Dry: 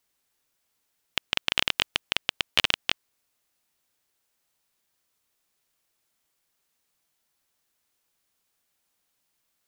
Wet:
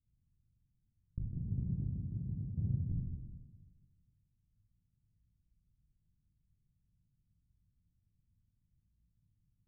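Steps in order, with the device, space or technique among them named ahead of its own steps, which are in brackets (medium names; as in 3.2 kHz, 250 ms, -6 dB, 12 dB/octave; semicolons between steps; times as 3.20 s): 1.32–2.90 s: high-pass 99 Hz 12 dB/octave; club heard from the street (peak limiter -7.5 dBFS, peak gain reduction 5 dB; low-pass 140 Hz 24 dB/octave; reverberation RT60 1.5 s, pre-delay 15 ms, DRR -5 dB); trim +16 dB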